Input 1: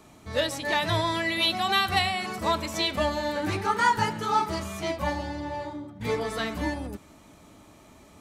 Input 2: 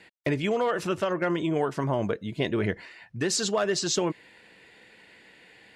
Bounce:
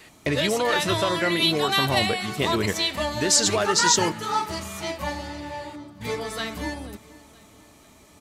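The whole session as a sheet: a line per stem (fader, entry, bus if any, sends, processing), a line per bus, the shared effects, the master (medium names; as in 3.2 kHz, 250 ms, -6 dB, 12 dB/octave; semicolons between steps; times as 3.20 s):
-2.0 dB, 0.00 s, no send, echo send -20.5 dB, treble shelf 2.7 kHz +7.5 dB
+1.0 dB, 0.00 s, no send, no echo send, treble shelf 3.7 kHz +11 dB; vibrato 1.5 Hz 14 cents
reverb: none
echo: feedback delay 480 ms, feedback 48%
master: none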